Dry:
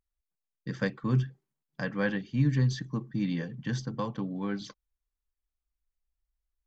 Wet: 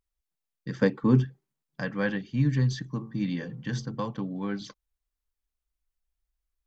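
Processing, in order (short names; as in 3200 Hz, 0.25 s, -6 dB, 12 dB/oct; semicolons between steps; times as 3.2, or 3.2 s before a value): 0.82–1.25 small resonant body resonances 270/430/860 Hz, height 10 dB, ringing for 25 ms; 2.91–3.89 de-hum 55.67 Hz, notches 25; gain +1 dB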